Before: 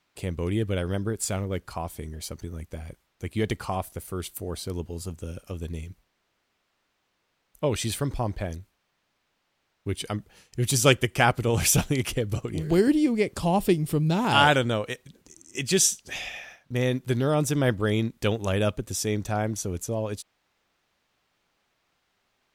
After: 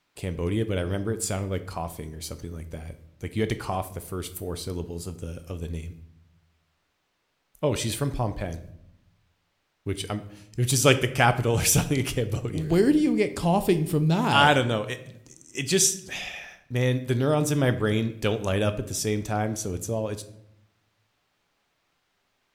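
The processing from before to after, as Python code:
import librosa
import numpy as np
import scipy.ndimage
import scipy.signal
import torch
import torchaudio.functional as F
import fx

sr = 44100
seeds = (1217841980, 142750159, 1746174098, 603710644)

y = fx.room_shoebox(x, sr, seeds[0], volume_m3=190.0, walls='mixed', distance_m=0.31)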